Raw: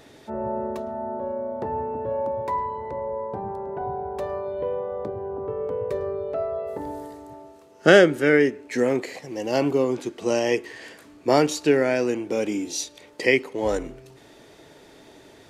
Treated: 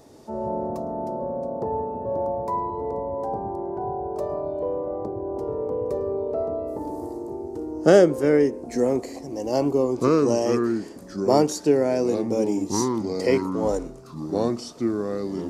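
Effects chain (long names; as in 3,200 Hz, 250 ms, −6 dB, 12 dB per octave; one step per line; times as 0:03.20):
delay with pitch and tempo change per echo 113 ms, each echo −4 semitones, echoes 2, each echo −6 dB
flat-topped bell 2,300 Hz −12 dB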